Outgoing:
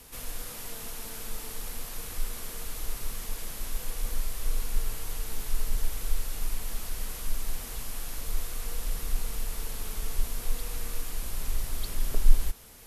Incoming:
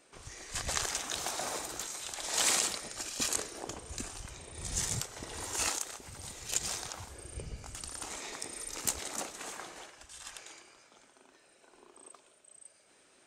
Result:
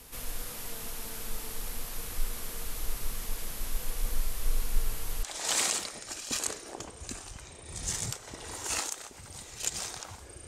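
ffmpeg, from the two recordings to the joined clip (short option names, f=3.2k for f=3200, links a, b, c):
-filter_complex "[0:a]apad=whole_dur=10.47,atrim=end=10.47,atrim=end=5.232[a];[1:a]atrim=start=2.118:end=7.36[b];[a][b]acrossfade=d=0.004:c1=hsin:c2=hsin"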